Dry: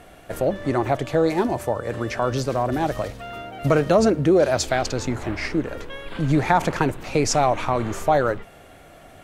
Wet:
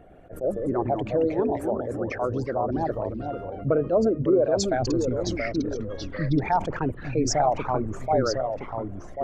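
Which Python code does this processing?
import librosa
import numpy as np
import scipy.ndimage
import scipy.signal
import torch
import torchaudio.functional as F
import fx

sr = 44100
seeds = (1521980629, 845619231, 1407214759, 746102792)

y = fx.envelope_sharpen(x, sr, power=2.0)
y = fx.echo_pitch(y, sr, ms=101, semitones=-2, count=2, db_per_echo=-6.0)
y = fx.attack_slew(y, sr, db_per_s=280.0)
y = F.gain(torch.from_numpy(y), -4.0).numpy()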